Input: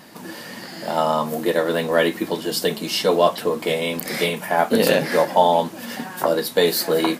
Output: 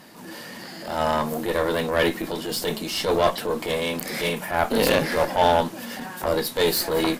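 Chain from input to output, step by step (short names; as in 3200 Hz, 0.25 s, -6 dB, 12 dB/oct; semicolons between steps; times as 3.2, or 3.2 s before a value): added harmonics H 3 -22 dB, 6 -21 dB, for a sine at -2.5 dBFS; transient shaper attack -8 dB, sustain +2 dB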